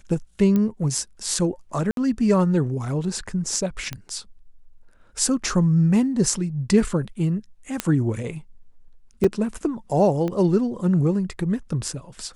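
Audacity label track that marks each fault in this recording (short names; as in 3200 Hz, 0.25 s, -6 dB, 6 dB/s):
0.560000	0.560000	pop -12 dBFS
1.910000	1.970000	gap 62 ms
3.930000	3.930000	pop -15 dBFS
7.800000	7.800000	pop -6 dBFS
9.240000	9.240000	gap 5 ms
10.280000	10.280000	pop -16 dBFS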